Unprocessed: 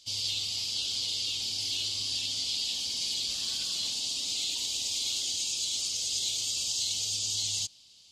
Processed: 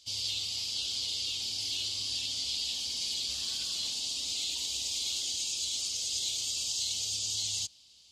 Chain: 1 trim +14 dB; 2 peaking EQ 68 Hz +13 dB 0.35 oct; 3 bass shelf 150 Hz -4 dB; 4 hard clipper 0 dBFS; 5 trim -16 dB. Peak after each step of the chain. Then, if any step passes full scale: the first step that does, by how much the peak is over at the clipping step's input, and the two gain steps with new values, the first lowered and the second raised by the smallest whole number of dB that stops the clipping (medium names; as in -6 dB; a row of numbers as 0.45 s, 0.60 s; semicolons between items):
-4.0 dBFS, -4.0 dBFS, -4.0 dBFS, -4.0 dBFS, -20.0 dBFS; nothing clips